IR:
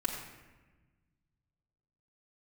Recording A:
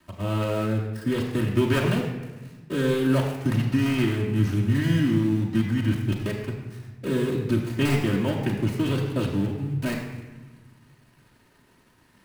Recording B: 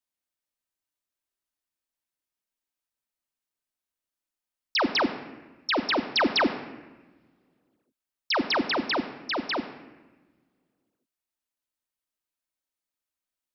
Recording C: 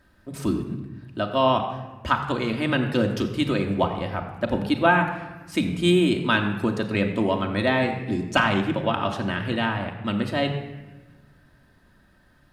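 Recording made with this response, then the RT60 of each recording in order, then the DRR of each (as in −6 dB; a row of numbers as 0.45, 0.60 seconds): A; 1.2, 1.2, 1.2 seconds; −5.5, 6.0, 1.5 decibels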